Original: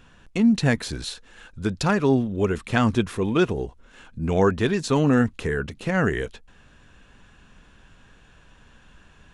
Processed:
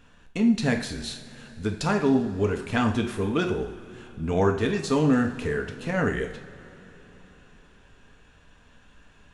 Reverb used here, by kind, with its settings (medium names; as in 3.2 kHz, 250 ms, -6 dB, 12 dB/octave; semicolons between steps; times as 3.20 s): two-slope reverb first 0.54 s, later 4.2 s, from -18 dB, DRR 3.5 dB; trim -4 dB